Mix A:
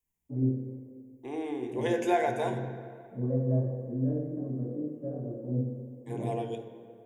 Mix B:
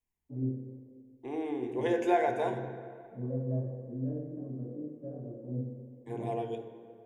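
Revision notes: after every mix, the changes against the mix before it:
first voice -5.5 dB; master: add treble shelf 4 kHz -9.5 dB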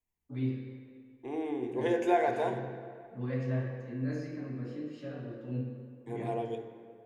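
first voice: remove Chebyshev low-pass 650 Hz, order 3

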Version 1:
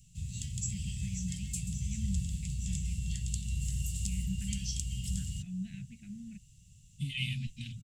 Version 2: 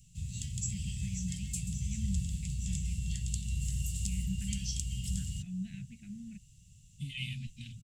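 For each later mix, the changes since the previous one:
second voice -4.0 dB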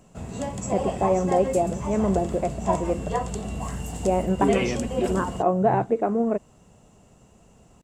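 second voice: entry -2.60 s; master: remove inverse Chebyshev band-stop 360–1200 Hz, stop band 60 dB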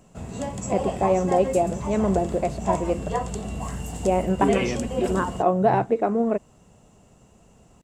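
first voice: remove distance through air 380 m

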